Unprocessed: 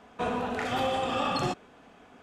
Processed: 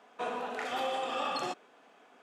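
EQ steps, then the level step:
high-pass filter 370 Hz 12 dB per octave
−4.0 dB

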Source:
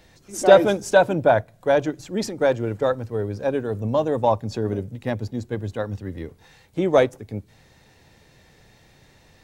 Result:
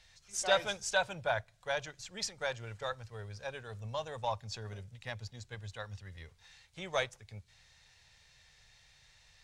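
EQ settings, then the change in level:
high-frequency loss of the air 93 metres
guitar amp tone stack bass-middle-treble 10-0-10
high-shelf EQ 4,900 Hz +10 dB
−2.5 dB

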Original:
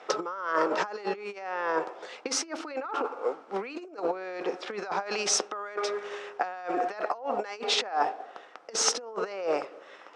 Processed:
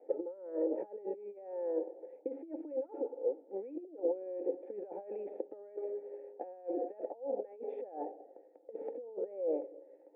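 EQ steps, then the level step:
formant resonators in series u
formant filter e
+17.0 dB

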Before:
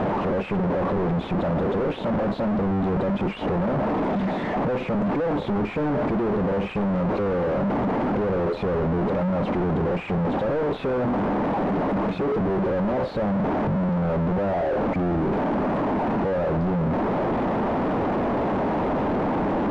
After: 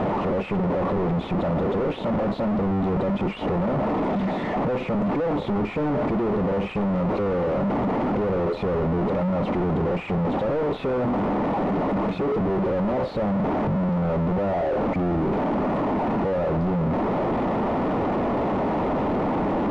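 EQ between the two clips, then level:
notch filter 1,600 Hz, Q 11
0.0 dB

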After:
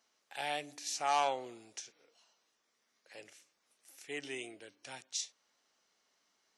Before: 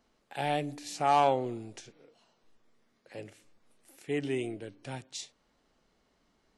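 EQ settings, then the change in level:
high-pass filter 1,500 Hz 6 dB per octave
parametric band 5,900 Hz +7 dB 0.4 octaves
0.0 dB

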